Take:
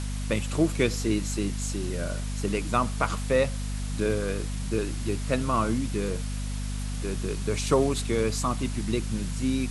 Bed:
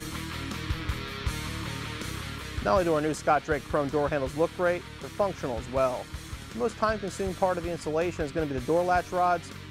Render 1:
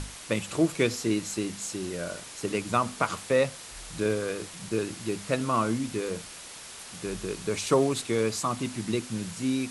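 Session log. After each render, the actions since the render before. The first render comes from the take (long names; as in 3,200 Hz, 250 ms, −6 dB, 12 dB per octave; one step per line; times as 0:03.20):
mains-hum notches 50/100/150/200/250 Hz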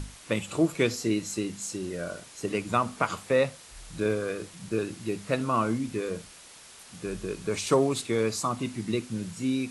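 noise reduction from a noise print 6 dB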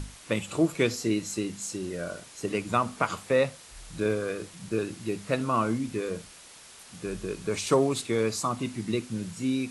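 no processing that can be heard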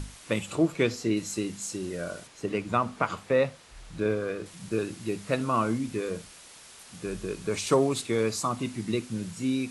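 0:00.55–0:01.17: high-shelf EQ 7,500 Hz −11 dB
0:02.27–0:04.46: low-pass filter 3,200 Hz 6 dB per octave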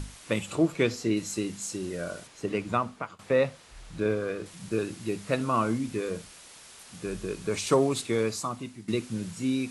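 0:02.70–0:03.19: fade out, to −23.5 dB
0:08.15–0:08.88: fade out, to −13.5 dB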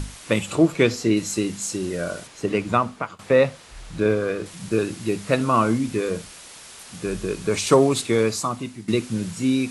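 level +7 dB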